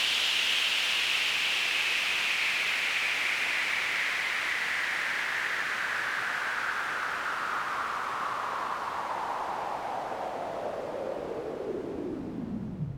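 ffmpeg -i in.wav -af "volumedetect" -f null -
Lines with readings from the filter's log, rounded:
mean_volume: -30.8 dB
max_volume: -14.3 dB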